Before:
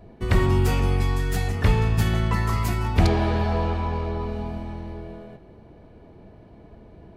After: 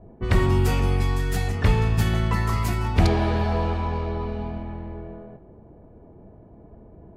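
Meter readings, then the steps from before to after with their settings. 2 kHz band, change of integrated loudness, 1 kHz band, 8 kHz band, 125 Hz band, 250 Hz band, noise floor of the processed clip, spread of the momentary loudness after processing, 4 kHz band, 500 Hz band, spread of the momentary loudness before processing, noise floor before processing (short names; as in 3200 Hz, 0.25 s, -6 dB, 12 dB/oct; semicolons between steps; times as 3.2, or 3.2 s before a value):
0.0 dB, 0.0 dB, 0.0 dB, 0.0 dB, 0.0 dB, 0.0 dB, -49 dBFS, 14 LU, 0.0 dB, 0.0 dB, 14 LU, -49 dBFS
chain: low-pass opened by the level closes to 840 Hz, open at -19.5 dBFS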